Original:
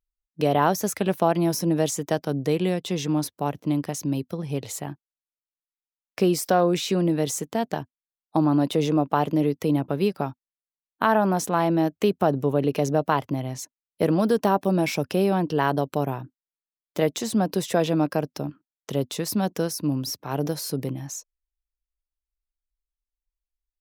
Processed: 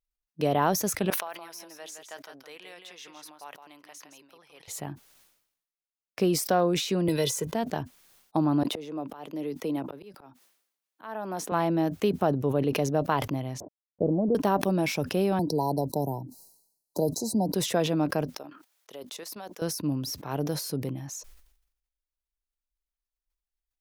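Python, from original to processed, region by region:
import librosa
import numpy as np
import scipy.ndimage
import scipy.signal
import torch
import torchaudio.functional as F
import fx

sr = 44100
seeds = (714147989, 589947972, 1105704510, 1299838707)

y = fx.chain(x, sr, fx.highpass(hz=1500.0, slope=12),
    fx.high_shelf(hz=2100.0, db=-10.5),
    fx.echo_single(ms=166, db=-8.0), at=(1.1, 4.68))
y = fx.chain(y, sr, fx.comb(ms=2.0, depth=0.66),
    fx.band_squash(depth_pct=70), at=(7.08, 7.54))
y = fx.chain(y, sr, fx.highpass(hz=250.0, slope=12),
    fx.auto_swell(attack_ms=571.0),
    fx.band_squash(depth_pct=40), at=(8.63, 11.52))
y = fx.chain(y, sr, fx.law_mismatch(coded='A'),
    fx.steep_lowpass(hz=730.0, slope=36),
    fx.pre_swell(db_per_s=60.0), at=(13.6, 14.35))
y = fx.chain(y, sr, fx.brickwall_bandstop(low_hz=1000.0, high_hz=3900.0),
    fx.peak_eq(hz=11000.0, db=7.0, octaves=1.3),
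    fx.band_squash(depth_pct=40), at=(15.39, 17.54))
y = fx.chain(y, sr, fx.highpass(hz=520.0, slope=12),
    fx.level_steps(step_db=12), at=(18.36, 19.62))
y = fx.notch(y, sr, hz=7600.0, q=22.0)
y = fx.sustainer(y, sr, db_per_s=75.0)
y = y * 10.0 ** (-4.0 / 20.0)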